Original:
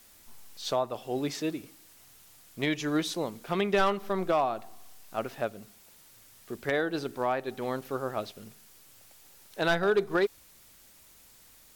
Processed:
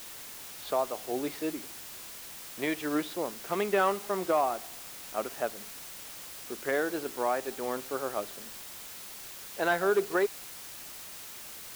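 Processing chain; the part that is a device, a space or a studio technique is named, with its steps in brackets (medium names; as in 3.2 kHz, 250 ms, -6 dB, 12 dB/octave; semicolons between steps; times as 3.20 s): wax cylinder (band-pass 270–2400 Hz; wow and flutter; white noise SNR 11 dB)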